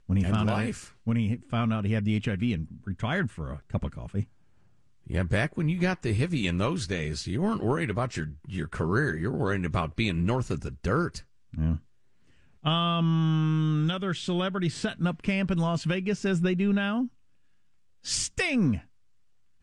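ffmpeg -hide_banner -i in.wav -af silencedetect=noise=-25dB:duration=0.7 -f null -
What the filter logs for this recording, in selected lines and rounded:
silence_start: 4.21
silence_end: 5.10 | silence_duration: 0.89
silence_start: 11.76
silence_end: 12.66 | silence_duration: 0.90
silence_start: 17.05
silence_end: 18.08 | silence_duration: 1.03
silence_start: 18.75
silence_end: 19.62 | silence_duration: 0.87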